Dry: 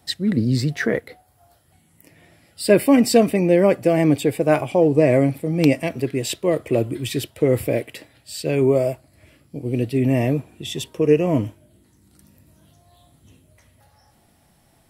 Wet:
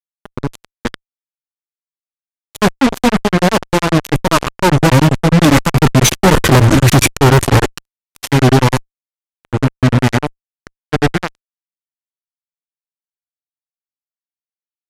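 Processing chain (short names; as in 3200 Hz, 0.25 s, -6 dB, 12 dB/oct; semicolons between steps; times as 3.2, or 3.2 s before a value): minimum comb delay 0.69 ms; Doppler pass-by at 6.54, 11 m/s, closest 3.8 m; grains 0.112 s, grains 10/s, spray 28 ms, pitch spread up and down by 0 st; formant shift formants -4 st; fuzz box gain 49 dB, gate -43 dBFS; downsampling 32000 Hz; record warp 78 rpm, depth 160 cents; gain +8 dB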